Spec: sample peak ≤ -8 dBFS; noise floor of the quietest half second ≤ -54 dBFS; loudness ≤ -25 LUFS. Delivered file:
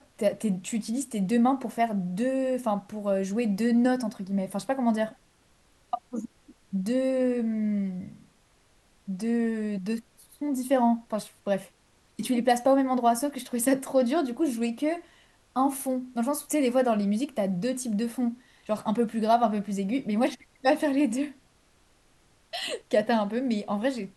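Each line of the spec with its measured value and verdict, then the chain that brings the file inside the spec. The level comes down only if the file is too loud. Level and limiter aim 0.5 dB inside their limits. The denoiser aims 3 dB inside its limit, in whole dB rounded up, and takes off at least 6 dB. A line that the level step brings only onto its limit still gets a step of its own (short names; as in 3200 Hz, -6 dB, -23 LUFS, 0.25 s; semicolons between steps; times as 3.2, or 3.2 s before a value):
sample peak -10.5 dBFS: OK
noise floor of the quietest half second -63 dBFS: OK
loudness -27.5 LUFS: OK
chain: none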